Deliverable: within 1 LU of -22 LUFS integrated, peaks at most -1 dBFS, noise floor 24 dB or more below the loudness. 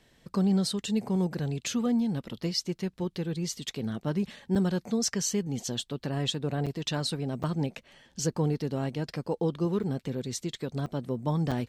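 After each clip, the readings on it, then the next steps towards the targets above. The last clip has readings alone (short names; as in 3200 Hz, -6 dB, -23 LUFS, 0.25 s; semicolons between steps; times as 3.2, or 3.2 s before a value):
dropouts 6; longest dropout 6.4 ms; loudness -30.5 LUFS; peak -16.5 dBFS; loudness target -22.0 LUFS
-> interpolate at 4.55/6.66/7.43/9.83/10.86/11.51, 6.4 ms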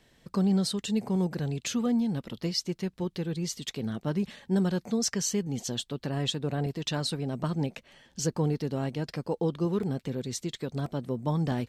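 dropouts 0; loudness -30.5 LUFS; peak -16.5 dBFS; loudness target -22.0 LUFS
-> gain +8.5 dB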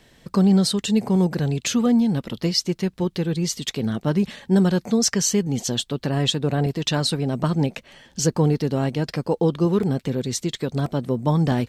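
loudness -22.0 LUFS; peak -8.0 dBFS; noise floor -57 dBFS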